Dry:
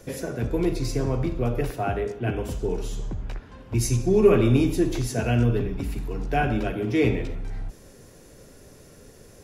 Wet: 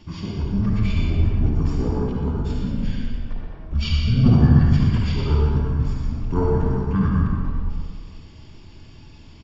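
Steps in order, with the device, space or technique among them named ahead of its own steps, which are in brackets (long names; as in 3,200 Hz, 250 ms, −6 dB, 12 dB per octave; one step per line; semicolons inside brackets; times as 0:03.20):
0:05.26–0:06.11: double-tracking delay 19 ms −11.5 dB
monster voice (pitch shifter −8.5 semitones; formants moved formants −4.5 semitones; low-shelf EQ 240 Hz +4 dB; single-tap delay 119 ms −9 dB; convolution reverb RT60 1.9 s, pre-delay 49 ms, DRR −2 dB)
level −1.5 dB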